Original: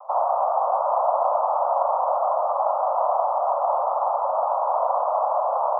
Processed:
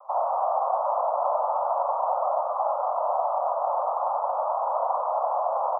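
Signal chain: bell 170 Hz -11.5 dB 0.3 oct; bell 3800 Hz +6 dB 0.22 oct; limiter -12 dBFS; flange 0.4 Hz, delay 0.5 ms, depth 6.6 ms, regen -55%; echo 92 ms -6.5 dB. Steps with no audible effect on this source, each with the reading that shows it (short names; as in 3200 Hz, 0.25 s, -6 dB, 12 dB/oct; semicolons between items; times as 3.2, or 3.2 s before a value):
bell 170 Hz: input band starts at 450 Hz; bell 3800 Hz: input band ends at 1400 Hz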